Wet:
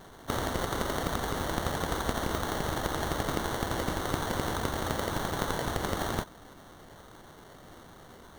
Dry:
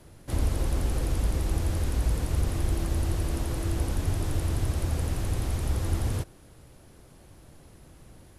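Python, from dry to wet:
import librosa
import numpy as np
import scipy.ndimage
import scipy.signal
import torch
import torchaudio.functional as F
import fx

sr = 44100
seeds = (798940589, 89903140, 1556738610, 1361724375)

y = fx.tilt_eq(x, sr, slope=4.0)
y = fx.sample_hold(y, sr, seeds[0], rate_hz=2500.0, jitter_pct=0)
y = y * librosa.db_to_amplitude(1.0)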